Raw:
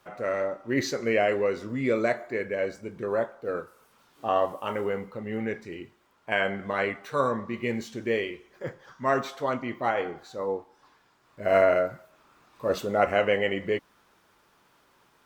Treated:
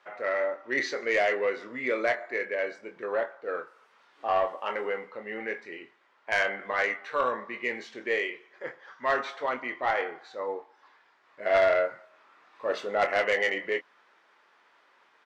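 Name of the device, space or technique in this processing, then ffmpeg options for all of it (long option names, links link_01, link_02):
intercom: -filter_complex "[0:a]highpass=460,lowpass=4100,equalizer=frequency=1900:width_type=o:width=0.5:gain=6,asoftclip=type=tanh:threshold=-16.5dB,asplit=2[link_01][link_02];[link_02]adelay=24,volume=-9dB[link_03];[link_01][link_03]amix=inputs=2:normalize=0"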